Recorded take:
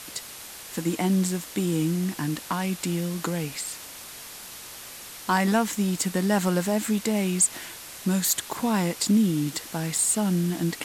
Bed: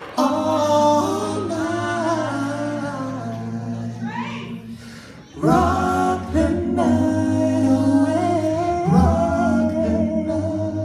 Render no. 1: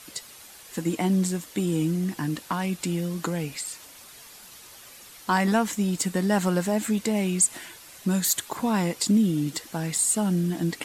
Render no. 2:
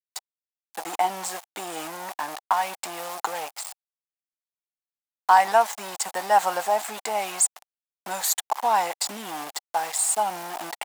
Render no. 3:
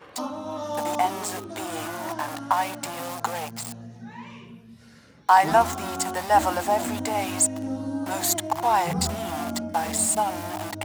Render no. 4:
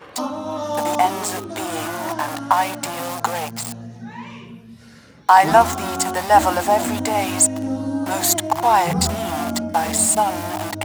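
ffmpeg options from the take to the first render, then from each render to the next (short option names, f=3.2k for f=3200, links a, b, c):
-af "afftdn=nr=8:nf=-42"
-af "aeval=exprs='val(0)*gte(abs(val(0)),0.0299)':c=same,highpass=f=790:t=q:w=4.9"
-filter_complex "[1:a]volume=-13.5dB[a];[0:a][a]amix=inputs=2:normalize=0"
-af "volume=6dB,alimiter=limit=-1dB:level=0:latency=1"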